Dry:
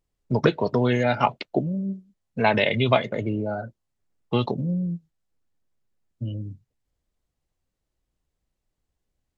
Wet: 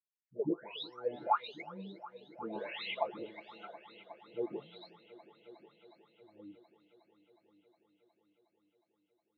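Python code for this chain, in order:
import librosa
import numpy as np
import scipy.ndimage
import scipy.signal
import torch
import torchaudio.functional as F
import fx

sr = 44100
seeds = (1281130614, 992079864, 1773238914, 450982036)

y = fx.spec_delay(x, sr, highs='late', ms=722)
y = fx.wah_lfo(y, sr, hz=1.5, low_hz=290.0, high_hz=3900.0, q=6.4)
y = fx.echo_heads(y, sr, ms=363, heads='all three', feedback_pct=57, wet_db=-21.0)
y = y * 10.0 ** (-2.5 / 20.0)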